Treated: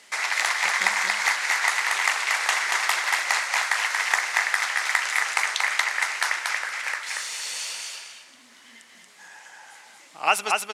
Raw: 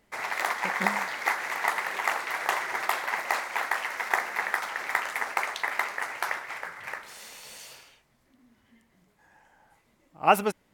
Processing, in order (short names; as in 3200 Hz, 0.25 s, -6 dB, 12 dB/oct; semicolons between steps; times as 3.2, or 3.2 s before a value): weighting filter ITU-R 468; feedback echo 0.232 s, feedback 18%, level -4 dB; three-band squash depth 40%